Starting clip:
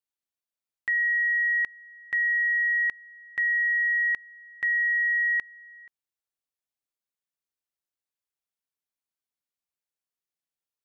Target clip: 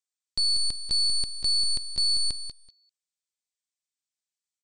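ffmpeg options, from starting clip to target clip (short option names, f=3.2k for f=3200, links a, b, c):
-filter_complex "[0:a]highpass=870,bandreject=f=1.2k:w=20,crystalizer=i=4.5:c=0,asplit=2[a][b];[b]aeval=exprs='(mod(20*val(0)+1,2)-1)/20':c=same,volume=-11dB[c];[a][c]amix=inputs=2:normalize=0,acontrast=22,aeval=exprs='clip(val(0),-1,0.0299)':c=same,asplit=2[d][e];[e]aecho=0:1:445|890:0.376|0.0601[f];[d][f]amix=inputs=2:normalize=0,aresample=8000,aresample=44100,asetrate=103194,aresample=44100,volume=-5dB"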